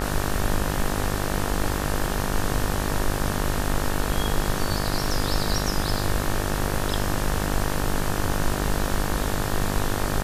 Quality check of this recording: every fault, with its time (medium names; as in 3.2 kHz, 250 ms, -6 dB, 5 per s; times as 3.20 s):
buzz 50 Hz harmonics 37 -28 dBFS